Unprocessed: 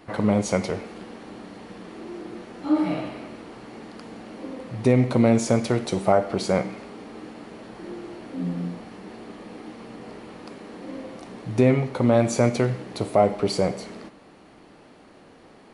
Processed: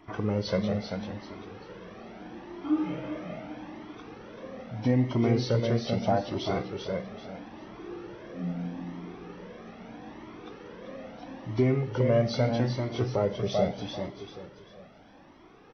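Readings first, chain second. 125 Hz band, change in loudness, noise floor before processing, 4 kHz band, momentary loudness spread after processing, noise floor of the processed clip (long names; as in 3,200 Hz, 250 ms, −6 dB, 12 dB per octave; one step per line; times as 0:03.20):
−3.0 dB, −6.5 dB, −51 dBFS, −2.5 dB, 19 LU, −53 dBFS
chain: hearing-aid frequency compression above 1,900 Hz 1.5 to 1
dynamic equaliser 1,100 Hz, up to −5 dB, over −34 dBFS, Q 0.74
repeating echo 390 ms, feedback 32%, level −5 dB
flanger whose copies keep moving one way rising 0.78 Hz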